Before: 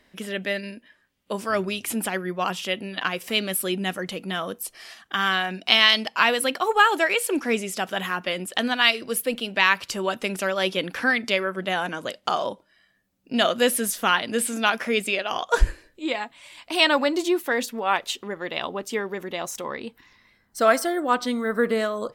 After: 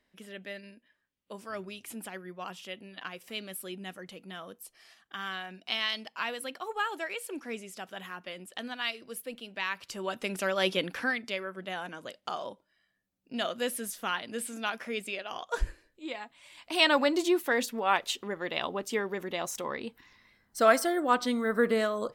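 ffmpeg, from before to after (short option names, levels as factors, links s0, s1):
-af "volume=1.78,afade=t=in:st=9.73:d=0.99:silence=0.266073,afade=t=out:st=10.72:d=0.5:silence=0.375837,afade=t=in:st=16.21:d=0.8:silence=0.398107"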